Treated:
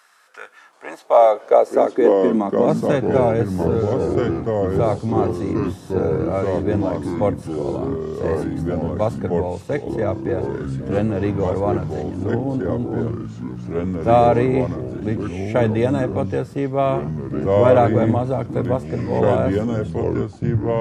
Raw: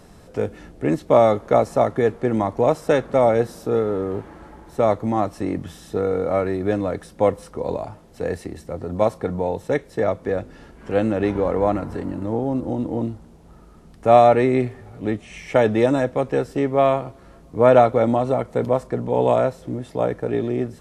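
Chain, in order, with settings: tape stop at the end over 1.01 s; echoes that change speed 0.73 s, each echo -3 st, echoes 3; high-pass sweep 1400 Hz -> 100 Hz, 0.41–3.34; gain -2.5 dB

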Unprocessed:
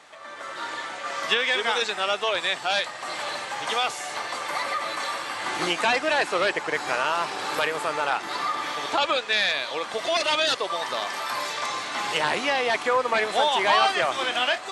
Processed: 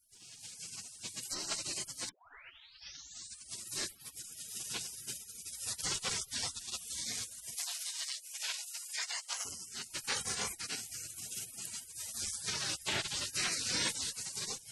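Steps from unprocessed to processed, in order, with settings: 2.09 tape start 1.52 s; spectral gate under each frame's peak -30 dB weak; 7.55–9.45 inverse Chebyshev high-pass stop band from 200 Hz, stop band 60 dB; gain +7.5 dB

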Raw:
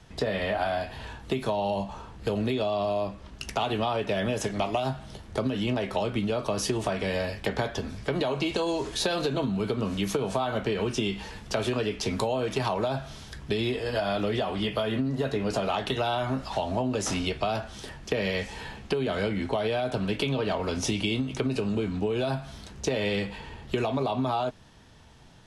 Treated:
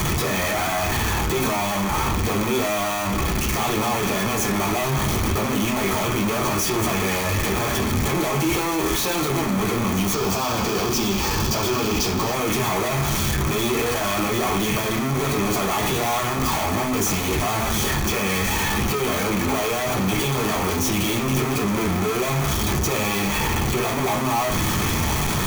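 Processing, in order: infinite clipping; high shelf 8500 Hz +10.5 dB; reverb RT60 0.45 s, pre-delay 3 ms, DRR 1.5 dB; transient shaper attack -4 dB, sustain +2 dB; 10.13–12.34 thirty-one-band EQ 2000 Hz -6 dB, 5000 Hz +7 dB, 10000 Hz -7 dB

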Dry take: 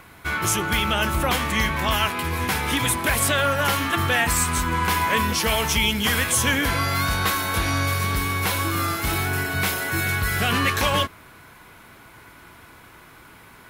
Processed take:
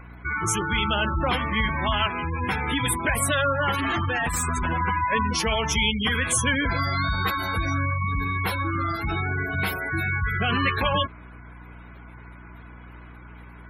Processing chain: 3.72–4.81 infinite clipping; spectral gate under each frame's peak -15 dB strong; hum 60 Hz, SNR 19 dB; gain -1 dB

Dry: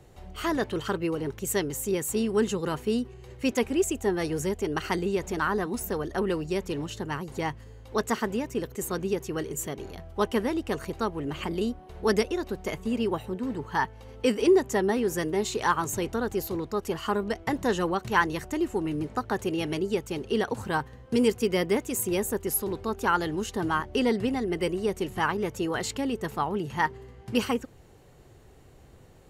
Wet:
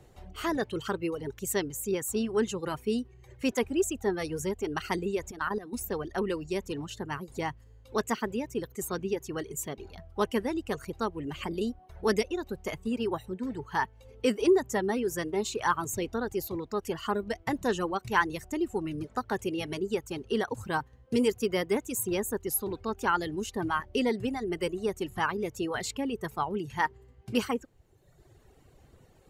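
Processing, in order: reverb removal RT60 1.1 s; 5.31–5.73 level quantiser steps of 14 dB; gain -2 dB

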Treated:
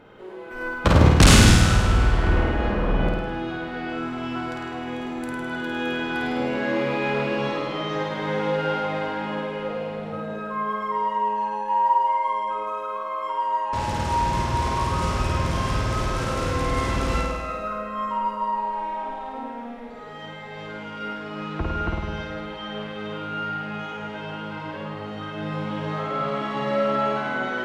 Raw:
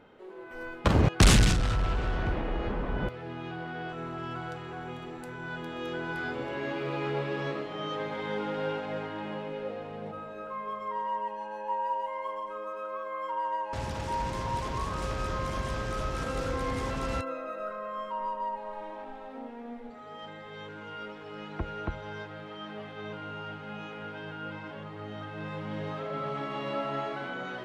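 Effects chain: in parallel at -10.5 dB: soft clip -19.5 dBFS, distortion -13 dB; on the sum: flutter echo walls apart 8.9 m, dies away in 1.1 s; plate-style reverb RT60 2 s, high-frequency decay 0.85×, pre-delay 75 ms, DRR 13.5 dB; gain +3.5 dB

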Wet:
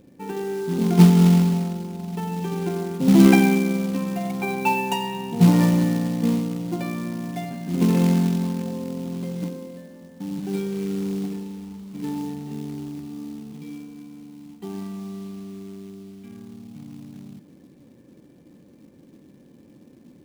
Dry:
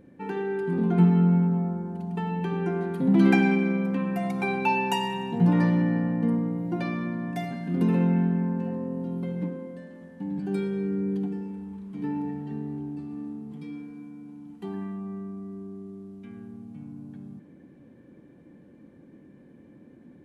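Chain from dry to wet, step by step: short-mantissa float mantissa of 2-bit; bell 1600 Hz -5.5 dB 0.69 oct; upward expander 1.5:1, over -27 dBFS; gain +7.5 dB

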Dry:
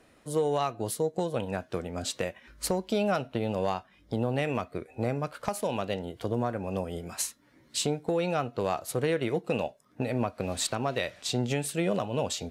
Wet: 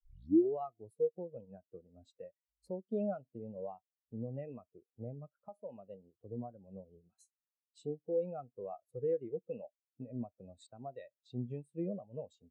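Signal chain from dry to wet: tape start at the beginning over 0.53 s; spectral expander 2.5:1; gain -4 dB

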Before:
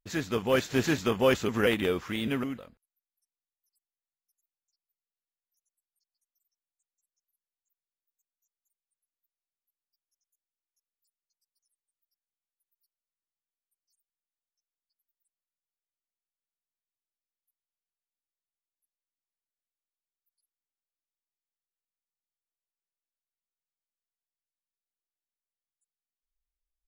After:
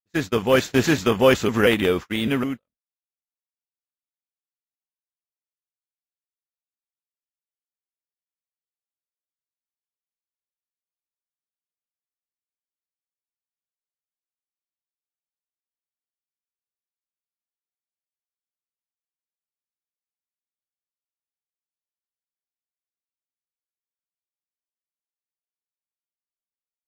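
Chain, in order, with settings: gate -34 dBFS, range -41 dB; gain +7.5 dB

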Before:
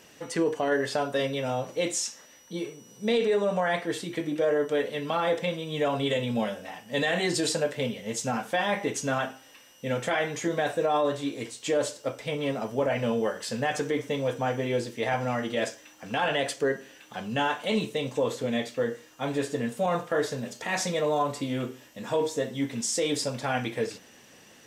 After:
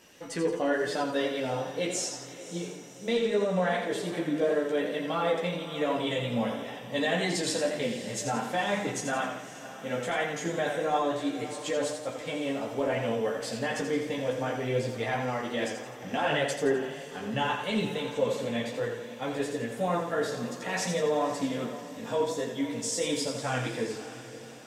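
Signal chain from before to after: chorus voices 6, 0.51 Hz, delay 14 ms, depth 3.9 ms; on a send: diffused feedback echo 0.552 s, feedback 48%, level -13.5 dB; on the sum: warbling echo 85 ms, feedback 48%, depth 58 cents, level -7 dB

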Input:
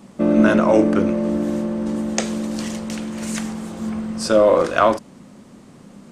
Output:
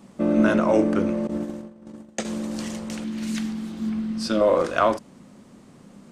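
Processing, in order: 1.27–2.25 gate -20 dBFS, range -23 dB; 3.04–4.41 graphic EQ 125/250/500/1000/4000/8000 Hz -6/+8/-9/-4/+5/-7 dB; gain -4.5 dB

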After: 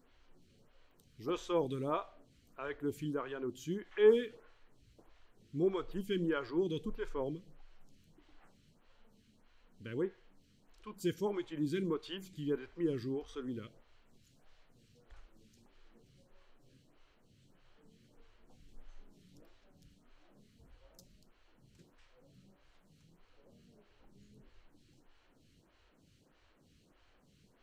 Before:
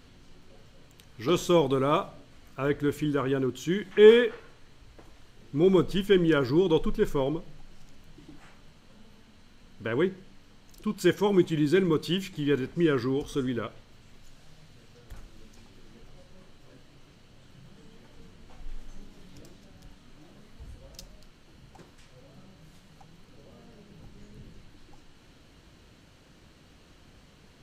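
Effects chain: photocell phaser 1.6 Hz; gain -9 dB

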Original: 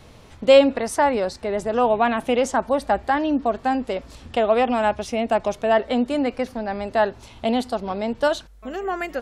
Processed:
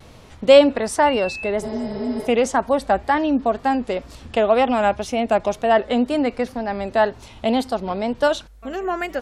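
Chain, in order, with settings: 1.05–1.49 whine 2700 Hz -31 dBFS; vibrato 2 Hz 68 cents; 1.66–2.25 spectral repair 390–5300 Hz before; gain +2 dB

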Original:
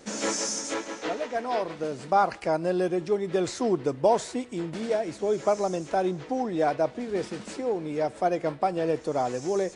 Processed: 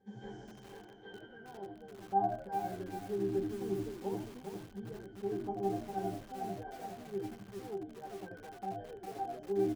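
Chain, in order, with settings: octave resonator G, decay 0.25 s; frequency-shifting echo 82 ms, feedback 31%, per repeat -82 Hz, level -5 dB; lo-fi delay 0.403 s, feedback 35%, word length 8-bit, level -5 dB; gain -1.5 dB

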